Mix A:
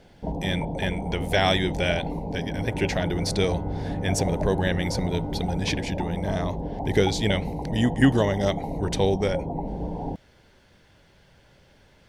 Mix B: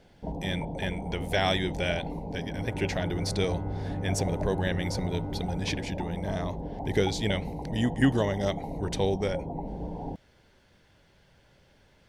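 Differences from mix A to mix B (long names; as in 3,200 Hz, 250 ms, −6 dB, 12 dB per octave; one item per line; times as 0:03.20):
speech −4.5 dB
first sound −5.0 dB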